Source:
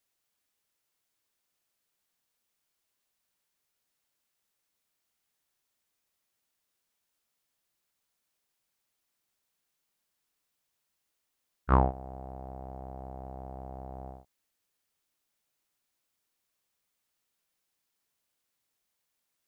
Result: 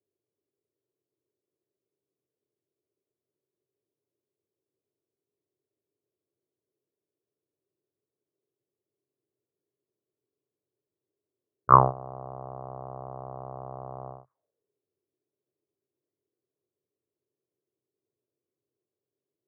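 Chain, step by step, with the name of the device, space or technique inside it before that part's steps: envelope filter bass rig (touch-sensitive low-pass 350–1200 Hz up, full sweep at -47.5 dBFS; cabinet simulation 89–2200 Hz, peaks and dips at 94 Hz +7 dB, 130 Hz +8 dB, 220 Hz -5 dB, 420 Hz +8 dB, 600 Hz +7 dB, 1.1 kHz +8 dB); trim -3 dB

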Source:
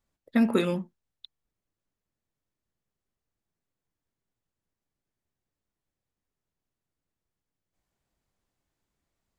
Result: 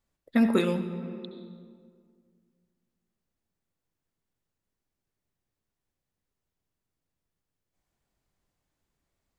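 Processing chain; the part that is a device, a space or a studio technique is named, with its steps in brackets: compressed reverb return (on a send at -6 dB: reverberation RT60 2.0 s, pre-delay 64 ms + compression, threshold -25 dBFS, peak gain reduction 7.5 dB)

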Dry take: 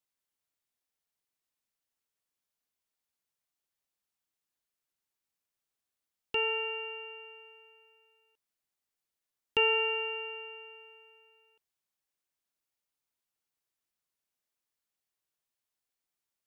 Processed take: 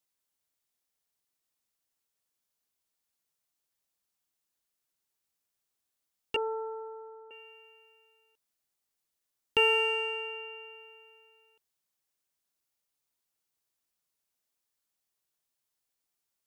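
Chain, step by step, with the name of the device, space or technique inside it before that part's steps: exciter from parts (in parallel at -7.5 dB: high-pass 2.8 kHz 6 dB/octave + saturation -37.5 dBFS, distortion -8 dB + high-pass 2.1 kHz 12 dB/octave); 6.36–7.31 s: on the sum: steep low-pass 1.4 kHz 72 dB/octave; trim +2 dB

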